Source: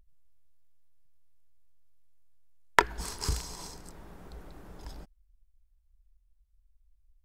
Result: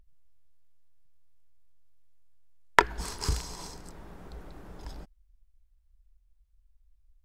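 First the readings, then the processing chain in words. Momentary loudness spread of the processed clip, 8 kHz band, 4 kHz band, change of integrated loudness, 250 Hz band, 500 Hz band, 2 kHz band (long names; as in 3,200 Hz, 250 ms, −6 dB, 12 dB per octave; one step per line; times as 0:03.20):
23 LU, −0.5 dB, +1.0 dB, +1.5 dB, +2.0 dB, +2.0 dB, +2.0 dB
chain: high-shelf EQ 7,900 Hz −5.5 dB
level +2 dB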